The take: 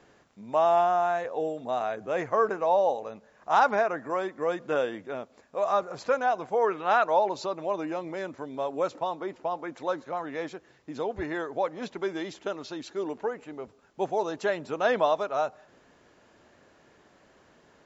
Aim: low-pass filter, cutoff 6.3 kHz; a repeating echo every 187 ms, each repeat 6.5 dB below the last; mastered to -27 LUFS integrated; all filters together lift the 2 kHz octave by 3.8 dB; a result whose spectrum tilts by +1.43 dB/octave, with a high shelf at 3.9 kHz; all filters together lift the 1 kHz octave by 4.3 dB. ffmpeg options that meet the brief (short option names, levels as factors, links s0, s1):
-af "lowpass=6300,equalizer=f=1000:t=o:g=5.5,equalizer=f=2000:t=o:g=4,highshelf=f=3900:g=-6.5,aecho=1:1:187|374|561|748|935|1122:0.473|0.222|0.105|0.0491|0.0231|0.0109,volume=0.75"